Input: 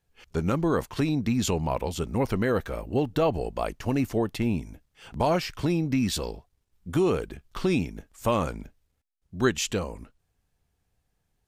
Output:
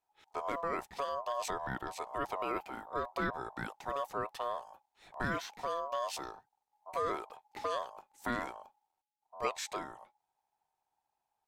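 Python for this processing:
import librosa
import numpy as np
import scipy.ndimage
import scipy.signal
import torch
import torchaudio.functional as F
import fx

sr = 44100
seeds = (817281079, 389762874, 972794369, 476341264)

y = x * np.sin(2.0 * np.pi * 840.0 * np.arange(len(x)) / sr)
y = fx.dynamic_eq(y, sr, hz=1700.0, q=1.4, threshold_db=-54.0, ratio=4.0, max_db=-6, at=(8.59, 9.45))
y = y * 10.0 ** (-8.5 / 20.0)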